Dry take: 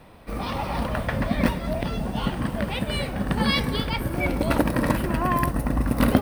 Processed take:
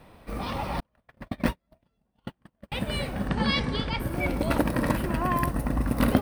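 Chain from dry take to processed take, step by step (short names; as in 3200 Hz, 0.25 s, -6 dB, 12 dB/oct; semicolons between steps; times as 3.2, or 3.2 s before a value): 0.8–2.72 gate -20 dBFS, range -45 dB; 3.28–4 LPF 7400 Hz 24 dB/oct; gain -3 dB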